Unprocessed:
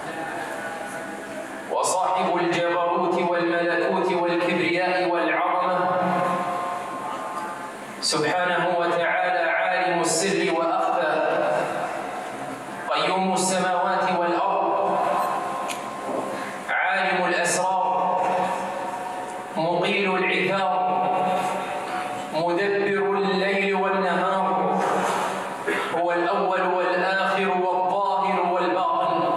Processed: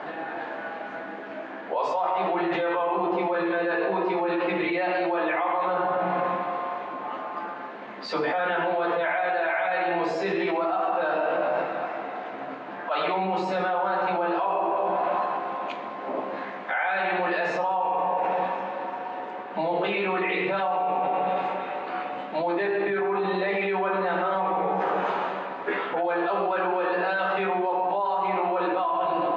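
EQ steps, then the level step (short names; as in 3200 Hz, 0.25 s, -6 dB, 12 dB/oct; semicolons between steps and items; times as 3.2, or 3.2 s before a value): BPF 220–4800 Hz; air absorption 220 m; -2.0 dB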